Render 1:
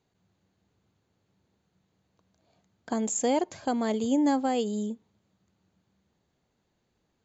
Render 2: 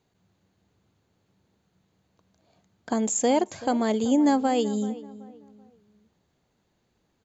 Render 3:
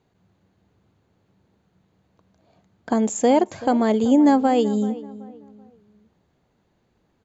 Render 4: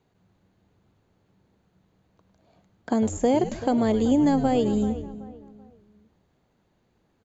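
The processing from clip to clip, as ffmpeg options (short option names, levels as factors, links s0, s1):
-filter_complex "[0:a]asplit=2[s0][s1];[s1]adelay=382,lowpass=f=1800:p=1,volume=0.15,asplit=2[s2][s3];[s3]adelay=382,lowpass=f=1800:p=1,volume=0.34,asplit=2[s4][s5];[s5]adelay=382,lowpass=f=1800:p=1,volume=0.34[s6];[s0][s2][s4][s6]amix=inputs=4:normalize=0,volume=1.5"
-af "highshelf=f=3400:g=-10,volume=1.88"
-filter_complex "[0:a]asplit=5[s0][s1][s2][s3][s4];[s1]adelay=102,afreqshift=-130,volume=0.211[s5];[s2]adelay=204,afreqshift=-260,volume=0.0871[s6];[s3]adelay=306,afreqshift=-390,volume=0.0355[s7];[s4]adelay=408,afreqshift=-520,volume=0.0146[s8];[s0][s5][s6][s7][s8]amix=inputs=5:normalize=0,acrossover=split=770|1900[s9][s10][s11];[s9]acompressor=threshold=0.158:ratio=4[s12];[s10]acompressor=threshold=0.0141:ratio=4[s13];[s11]acompressor=threshold=0.0158:ratio=4[s14];[s12][s13][s14]amix=inputs=3:normalize=0,volume=0.841"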